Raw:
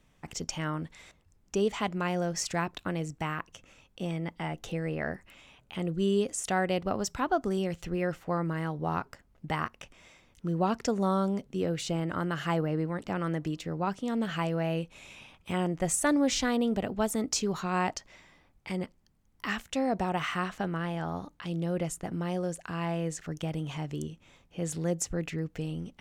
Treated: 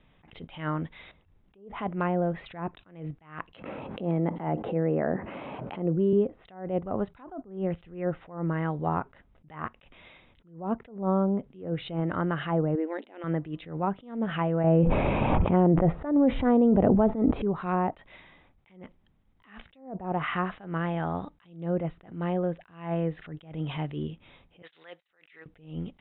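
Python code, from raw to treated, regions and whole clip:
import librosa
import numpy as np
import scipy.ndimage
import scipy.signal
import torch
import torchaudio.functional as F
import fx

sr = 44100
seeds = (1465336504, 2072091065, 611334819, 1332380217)

y = fx.chain(x, sr, fx.highpass(hz=180.0, slope=12),
    fx.resample_bad(factor=6, down='filtered', up='zero_stuff'),
    fx.env_flatten(amount_pct=70), at=(3.53, 6.13))
y = fx.chain(y, sr, fx.brickwall_highpass(low_hz=220.0),
    fx.peak_eq(hz=1200.0, db=-9.5, octaves=0.52), at=(12.75, 13.24))
y = fx.chain(y, sr, fx.high_shelf(hz=4600.0, db=-11.5),
    fx.env_flatten(amount_pct=100), at=(14.64, 17.42))
y = fx.chain(y, sr, fx.highpass(hz=1400.0, slope=12),
    fx.over_compress(threshold_db=-42.0, ratio=-0.5), at=(24.62, 25.46))
y = fx.env_lowpass_down(y, sr, base_hz=880.0, full_db=-24.5)
y = scipy.signal.sosfilt(scipy.signal.cheby1(8, 1.0, 3800.0, 'lowpass', fs=sr, output='sos'), y)
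y = fx.attack_slew(y, sr, db_per_s=130.0)
y = F.gain(torch.from_numpy(y), 4.5).numpy()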